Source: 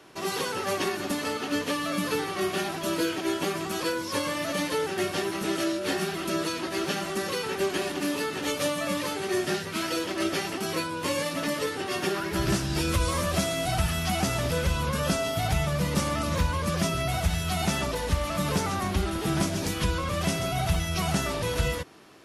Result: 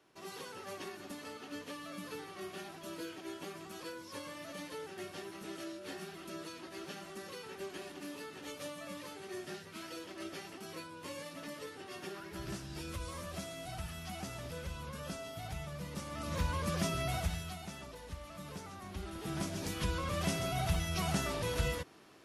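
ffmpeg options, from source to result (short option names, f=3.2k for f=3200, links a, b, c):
-af "volume=5dB,afade=t=in:st=16.08:d=0.42:silence=0.354813,afade=t=out:st=17.14:d=0.47:silence=0.251189,afade=t=in:st=18.81:d=1.3:silence=0.237137"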